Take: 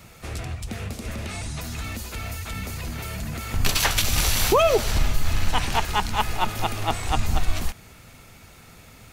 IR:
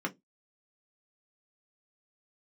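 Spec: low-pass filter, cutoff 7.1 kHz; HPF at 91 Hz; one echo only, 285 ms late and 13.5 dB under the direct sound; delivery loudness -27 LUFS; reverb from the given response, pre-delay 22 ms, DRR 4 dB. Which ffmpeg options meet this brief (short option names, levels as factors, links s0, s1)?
-filter_complex "[0:a]highpass=91,lowpass=7100,aecho=1:1:285:0.211,asplit=2[s0][s1];[1:a]atrim=start_sample=2205,adelay=22[s2];[s1][s2]afir=irnorm=-1:irlink=0,volume=0.355[s3];[s0][s3]amix=inputs=2:normalize=0,volume=0.794"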